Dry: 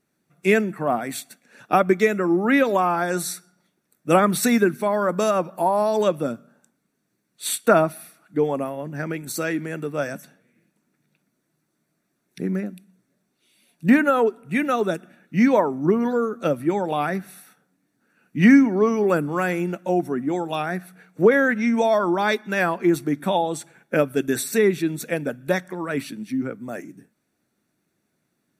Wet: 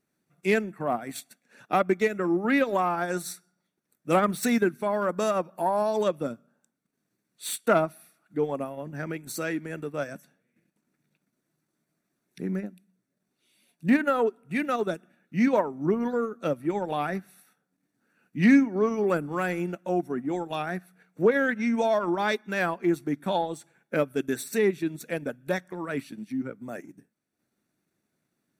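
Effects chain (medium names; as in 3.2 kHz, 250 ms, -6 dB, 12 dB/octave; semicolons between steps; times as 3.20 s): self-modulated delay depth 0.058 ms; transient shaper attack -2 dB, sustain -7 dB; trim -4.5 dB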